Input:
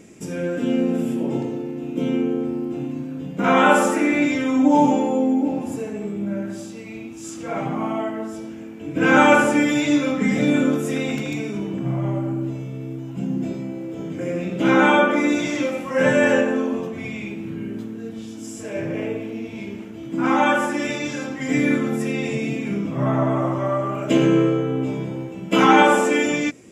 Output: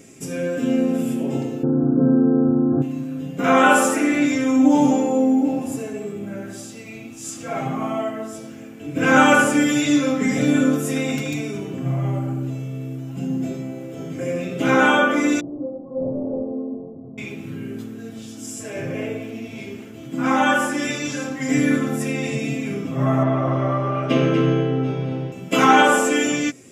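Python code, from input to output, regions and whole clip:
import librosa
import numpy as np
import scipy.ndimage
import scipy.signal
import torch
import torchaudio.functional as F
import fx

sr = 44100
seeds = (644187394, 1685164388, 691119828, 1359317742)

y = fx.chain(x, sr, fx.brickwall_lowpass(high_hz=1700.0),
    fx.low_shelf(hz=330.0, db=6.5),
    fx.env_flatten(amount_pct=70), at=(1.63, 2.82))
y = fx.chain(y, sr, fx.delta_mod(bps=16000, step_db=-29.0),
    fx.gaussian_blur(sigma=15.0),
    fx.low_shelf(hz=250.0, db=-10.0), at=(15.4, 17.18))
y = fx.chain(y, sr, fx.savgol(points=15),
    fx.echo_single(ms=242, db=-6.0), at=(23.23, 25.32))
y = fx.high_shelf(y, sr, hz=5400.0, db=8.5)
y = fx.notch(y, sr, hz=930.0, q=13.0)
y = y + 0.49 * np.pad(y, (int(7.5 * sr / 1000.0), 0))[:len(y)]
y = y * librosa.db_to_amplitude(-1.0)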